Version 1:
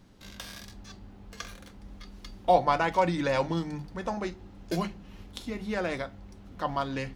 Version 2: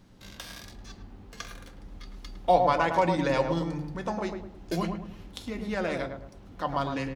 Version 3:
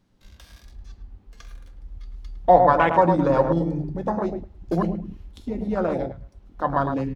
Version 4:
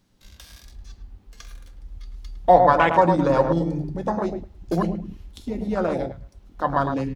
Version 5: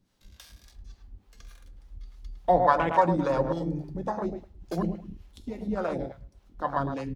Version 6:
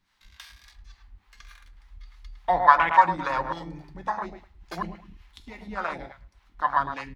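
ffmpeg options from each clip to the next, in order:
ffmpeg -i in.wav -filter_complex "[0:a]asplit=2[link_01][link_02];[link_02]adelay=107,lowpass=frequency=1000:poles=1,volume=-3.5dB,asplit=2[link_03][link_04];[link_04]adelay=107,lowpass=frequency=1000:poles=1,volume=0.42,asplit=2[link_05][link_06];[link_06]adelay=107,lowpass=frequency=1000:poles=1,volume=0.42,asplit=2[link_07][link_08];[link_08]adelay=107,lowpass=frequency=1000:poles=1,volume=0.42,asplit=2[link_09][link_10];[link_10]adelay=107,lowpass=frequency=1000:poles=1,volume=0.42[link_11];[link_01][link_03][link_05][link_07][link_09][link_11]amix=inputs=6:normalize=0" out.wav
ffmpeg -i in.wav -af "afwtdn=0.0316,volume=7dB" out.wav
ffmpeg -i in.wav -af "highshelf=frequency=3000:gain=8.5" out.wav
ffmpeg -i in.wav -filter_complex "[0:a]acrossover=split=490[link_01][link_02];[link_01]aeval=exprs='val(0)*(1-0.7/2+0.7/2*cos(2*PI*3.5*n/s))':channel_layout=same[link_03];[link_02]aeval=exprs='val(0)*(1-0.7/2-0.7/2*cos(2*PI*3.5*n/s))':channel_layout=same[link_04];[link_03][link_04]amix=inputs=2:normalize=0,volume=-3dB" out.wav
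ffmpeg -i in.wav -af "equalizer=frequency=125:width_type=o:width=1:gain=-7,equalizer=frequency=250:width_type=o:width=1:gain=-5,equalizer=frequency=500:width_type=o:width=1:gain=-9,equalizer=frequency=1000:width_type=o:width=1:gain=9,equalizer=frequency=2000:width_type=o:width=1:gain=11,equalizer=frequency=4000:width_type=o:width=1:gain=5,volume=-2dB" out.wav

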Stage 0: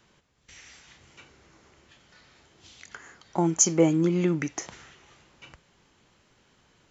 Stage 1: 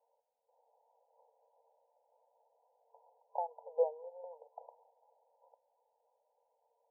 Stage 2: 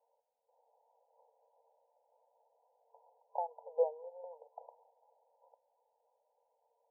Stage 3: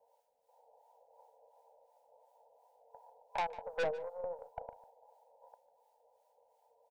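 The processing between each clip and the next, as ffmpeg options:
ffmpeg -i in.wav -af "afftfilt=real='re*between(b*sr/4096,450,1000)':imag='im*between(b*sr/4096,450,1000)':win_size=4096:overlap=0.75,volume=-6.5dB" out.wav
ffmpeg -i in.wav -af anull out.wav
ffmpeg -i in.wav -filter_complex "[0:a]aeval=exprs='(tanh(79.4*val(0)+0.35)-tanh(0.35))/79.4':channel_layout=same,acrossover=split=790[link_01][link_02];[link_01]aeval=exprs='val(0)*(1-0.7/2+0.7/2*cos(2*PI*2.8*n/s))':channel_layout=same[link_03];[link_02]aeval=exprs='val(0)*(1-0.7/2-0.7/2*cos(2*PI*2.8*n/s))':channel_layout=same[link_04];[link_03][link_04]amix=inputs=2:normalize=0,aecho=1:1:148:0.126,volume=12dB" out.wav

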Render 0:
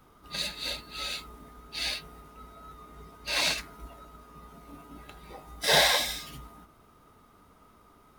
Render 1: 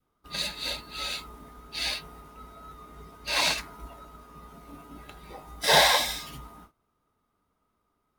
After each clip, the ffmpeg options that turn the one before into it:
ffmpeg -i in.wav -af "agate=range=-19dB:threshold=-53dB:ratio=16:detection=peak,adynamicequalizer=threshold=0.00355:dfrequency=940:dqfactor=2.6:tfrequency=940:tqfactor=2.6:attack=5:release=100:ratio=0.375:range=3:mode=boostabove:tftype=bell,volume=1.5dB" out.wav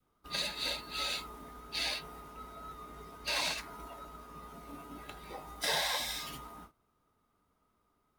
ffmpeg -i in.wav -filter_complex "[0:a]acrossover=split=250|1000|3400[link_01][link_02][link_03][link_04];[link_01]acompressor=threshold=-53dB:ratio=4[link_05];[link_02]acompressor=threshold=-42dB:ratio=4[link_06];[link_03]acompressor=threshold=-38dB:ratio=4[link_07];[link_04]acompressor=threshold=-37dB:ratio=4[link_08];[link_05][link_06][link_07][link_08]amix=inputs=4:normalize=0" out.wav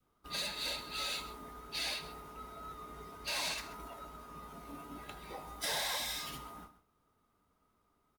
ffmpeg -i in.wav -filter_complex "[0:a]acrossover=split=6700[link_01][link_02];[link_01]asoftclip=type=tanh:threshold=-33dB[link_03];[link_03][link_02]amix=inputs=2:normalize=0,aecho=1:1:132:0.178" out.wav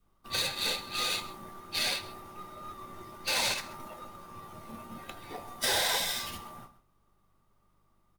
ffmpeg -i in.wav -af "aeval=exprs='val(0)+0.000282*(sin(2*PI*50*n/s)+sin(2*PI*2*50*n/s)/2+sin(2*PI*3*50*n/s)/3+sin(2*PI*4*50*n/s)/4+sin(2*PI*5*50*n/s)/5)':channel_layout=same,afreqshift=-60,aeval=exprs='0.0794*(cos(1*acos(clip(val(0)/0.0794,-1,1)))-cos(1*PI/2))+0.0316*(cos(5*acos(clip(val(0)/0.0794,-1,1)))-cos(5*PI/2))+0.0251*(cos(7*acos(clip(val(0)/0.0794,-1,1)))-cos(7*PI/2))':channel_layout=same,volume=4.5dB" out.wav

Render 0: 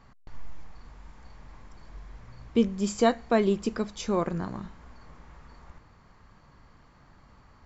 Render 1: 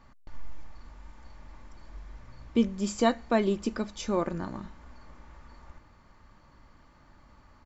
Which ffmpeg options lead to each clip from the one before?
ffmpeg -i in.wav -af "aecho=1:1:3.4:0.33,volume=-1.5dB" out.wav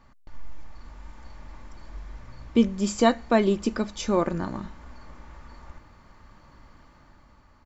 ffmpeg -i in.wav -af "dynaudnorm=framelen=110:gausssize=13:maxgain=5dB" out.wav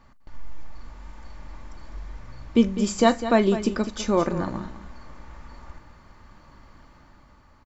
ffmpeg -i in.wav -af "aecho=1:1:42|203:0.112|0.251,volume=1.5dB" out.wav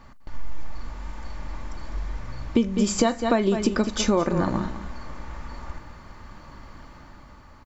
ffmpeg -i in.wav -af "acompressor=threshold=-23dB:ratio=12,volume=6.5dB" out.wav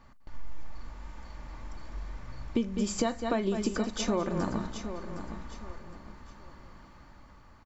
ffmpeg -i in.wav -af "aecho=1:1:763|1526|2289:0.299|0.0955|0.0306,volume=-8dB" out.wav

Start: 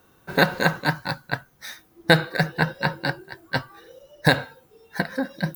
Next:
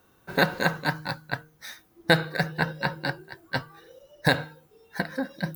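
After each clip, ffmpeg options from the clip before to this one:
ffmpeg -i in.wav -af "bandreject=frequency=155:width_type=h:width=4,bandreject=frequency=310:width_type=h:width=4,bandreject=frequency=465:width_type=h:width=4,volume=-3.5dB" out.wav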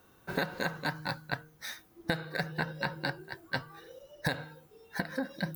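ffmpeg -i in.wav -af "acompressor=threshold=-29dB:ratio=6" out.wav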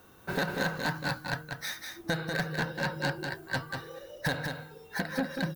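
ffmpeg -i in.wav -filter_complex "[0:a]asoftclip=type=tanh:threshold=-28dB,asplit=2[link_01][link_02];[link_02]aecho=0:1:192:0.531[link_03];[link_01][link_03]amix=inputs=2:normalize=0,volume=5dB" out.wav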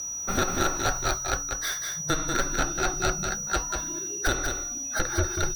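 ffmpeg -i in.wav -af "aeval=exprs='val(0)+0.0158*sin(2*PI*6000*n/s)':channel_layout=same,afreqshift=-180,volume=5dB" out.wav

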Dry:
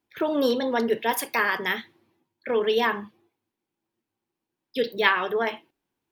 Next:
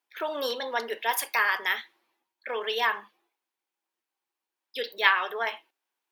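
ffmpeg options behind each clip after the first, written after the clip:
ffmpeg -i in.wav -af "highpass=760" out.wav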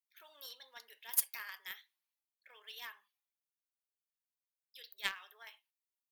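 ffmpeg -i in.wav -af "aderivative,aeval=exprs='0.251*(cos(1*acos(clip(val(0)/0.251,-1,1)))-cos(1*PI/2))+0.0126*(cos(3*acos(clip(val(0)/0.251,-1,1)))-cos(3*PI/2))+0.02*(cos(7*acos(clip(val(0)/0.251,-1,1)))-cos(7*PI/2))':channel_layout=same,acrusher=bits=7:mode=log:mix=0:aa=0.000001,volume=-1dB" out.wav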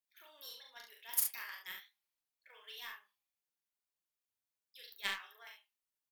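ffmpeg -i in.wav -af "flanger=delay=4.8:depth=7.2:regen=48:speed=0.53:shape=sinusoidal,aecho=1:1:39|69:0.668|0.447,volume=2dB" out.wav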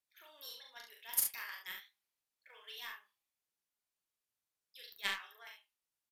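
ffmpeg -i in.wav -af "aresample=32000,aresample=44100,volume=1dB" out.wav

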